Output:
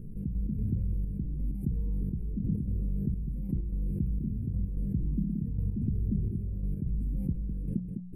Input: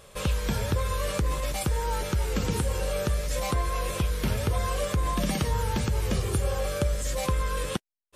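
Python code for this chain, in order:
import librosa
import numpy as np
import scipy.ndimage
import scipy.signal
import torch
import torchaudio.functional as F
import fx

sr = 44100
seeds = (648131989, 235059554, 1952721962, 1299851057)

y = fx.rattle_buzz(x, sr, strikes_db=-30.0, level_db=-25.0)
y = scipy.signal.sosfilt(scipy.signal.cheby2(4, 50, [580.0, 7100.0], 'bandstop', fs=sr, output='sos'), y)
y = fx.peak_eq(y, sr, hz=65.0, db=-15.0, octaves=2.3)
y = fx.hum_notches(y, sr, base_hz=60, count=3)
y = fx.step_gate(y, sr, bpm=129, pattern='...x.xxxx', floor_db=-12.0, edge_ms=4.5)
y = fx.spacing_loss(y, sr, db_at_10k=27)
y = y + 10.0 ** (-21.0 / 20.0) * np.pad(y, (int(205 * sr / 1000.0), 0))[:len(y)]
y = fx.env_flatten(y, sr, amount_pct=70)
y = y * 10.0 ** (6.5 / 20.0)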